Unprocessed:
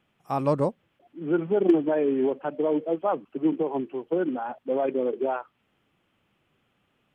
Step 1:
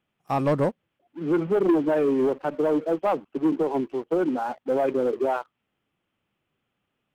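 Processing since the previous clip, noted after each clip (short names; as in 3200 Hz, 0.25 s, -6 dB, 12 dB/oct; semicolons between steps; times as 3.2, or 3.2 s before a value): sample leveller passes 2; gain -4 dB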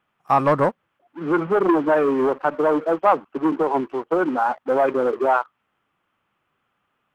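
bell 1200 Hz +12.5 dB 1.6 oct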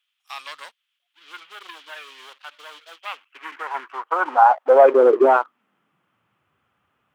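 high-pass sweep 3500 Hz -> 75 Hz, 2.97–6.65; gain +1.5 dB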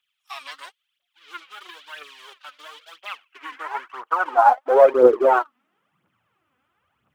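phaser 0.99 Hz, delay 4.1 ms, feedback 64%; gain -3 dB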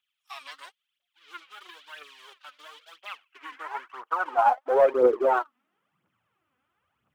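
soft clip -3 dBFS, distortion -22 dB; gain -5.5 dB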